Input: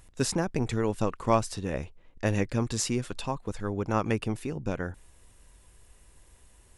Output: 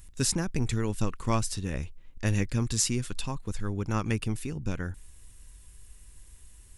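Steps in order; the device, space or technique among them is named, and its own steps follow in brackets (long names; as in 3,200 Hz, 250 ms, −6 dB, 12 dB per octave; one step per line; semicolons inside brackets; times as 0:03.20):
smiley-face EQ (low-shelf EQ 80 Hz +8 dB; parametric band 640 Hz −9 dB 1.6 octaves; high-shelf EQ 5,900 Hz +7.5 dB)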